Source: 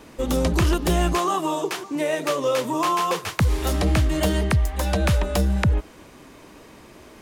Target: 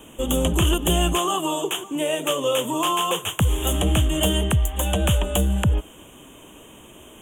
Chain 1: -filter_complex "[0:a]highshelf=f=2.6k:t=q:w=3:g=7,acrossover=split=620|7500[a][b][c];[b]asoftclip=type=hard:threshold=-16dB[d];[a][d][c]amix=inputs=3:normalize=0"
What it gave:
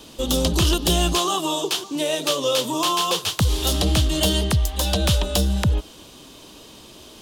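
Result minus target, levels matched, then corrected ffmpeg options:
4000 Hz band +3.0 dB
-filter_complex "[0:a]asuperstop=centerf=4700:order=8:qfactor=1.4,highshelf=f=2.6k:t=q:w=3:g=7,acrossover=split=620|7500[a][b][c];[b]asoftclip=type=hard:threshold=-16dB[d];[a][d][c]amix=inputs=3:normalize=0"

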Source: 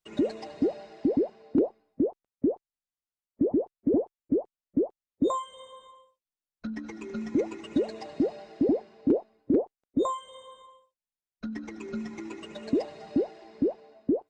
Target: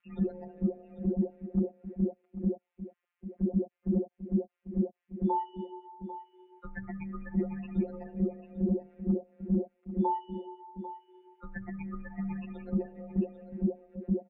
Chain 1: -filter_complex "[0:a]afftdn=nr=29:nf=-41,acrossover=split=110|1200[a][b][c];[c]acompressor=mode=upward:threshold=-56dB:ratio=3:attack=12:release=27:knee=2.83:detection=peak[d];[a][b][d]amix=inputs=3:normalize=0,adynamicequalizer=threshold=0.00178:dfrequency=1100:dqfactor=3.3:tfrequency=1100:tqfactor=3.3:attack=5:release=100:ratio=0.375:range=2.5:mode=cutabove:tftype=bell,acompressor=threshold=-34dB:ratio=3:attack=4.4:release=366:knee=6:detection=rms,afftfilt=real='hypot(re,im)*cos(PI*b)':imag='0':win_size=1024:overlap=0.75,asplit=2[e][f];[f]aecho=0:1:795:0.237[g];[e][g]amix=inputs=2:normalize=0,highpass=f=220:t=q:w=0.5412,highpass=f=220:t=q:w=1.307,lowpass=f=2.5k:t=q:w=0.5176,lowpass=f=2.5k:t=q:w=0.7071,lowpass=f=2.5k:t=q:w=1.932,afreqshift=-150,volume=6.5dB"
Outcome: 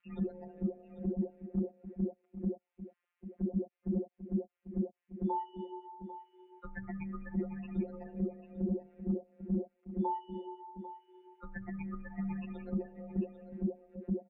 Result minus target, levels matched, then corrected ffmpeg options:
compressor: peak gain reduction +5 dB
-filter_complex "[0:a]afftdn=nr=29:nf=-41,acrossover=split=110|1200[a][b][c];[c]acompressor=mode=upward:threshold=-56dB:ratio=3:attack=12:release=27:knee=2.83:detection=peak[d];[a][b][d]amix=inputs=3:normalize=0,adynamicequalizer=threshold=0.00178:dfrequency=1100:dqfactor=3.3:tfrequency=1100:tqfactor=3.3:attack=5:release=100:ratio=0.375:range=2.5:mode=cutabove:tftype=bell,acompressor=threshold=-26.5dB:ratio=3:attack=4.4:release=366:knee=6:detection=rms,afftfilt=real='hypot(re,im)*cos(PI*b)':imag='0':win_size=1024:overlap=0.75,asplit=2[e][f];[f]aecho=0:1:795:0.237[g];[e][g]amix=inputs=2:normalize=0,highpass=f=220:t=q:w=0.5412,highpass=f=220:t=q:w=1.307,lowpass=f=2.5k:t=q:w=0.5176,lowpass=f=2.5k:t=q:w=0.7071,lowpass=f=2.5k:t=q:w=1.932,afreqshift=-150,volume=6.5dB"

